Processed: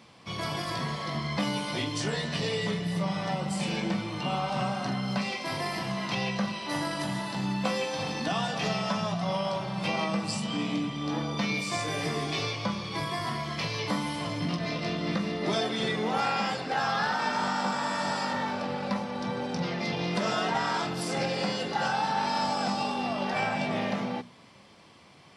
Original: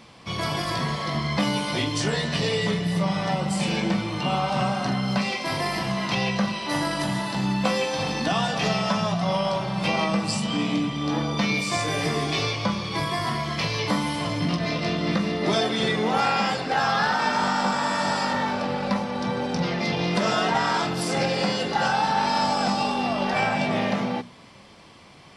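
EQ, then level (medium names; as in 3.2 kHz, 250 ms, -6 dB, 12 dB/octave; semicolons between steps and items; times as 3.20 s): high-pass 75 Hz; -5.5 dB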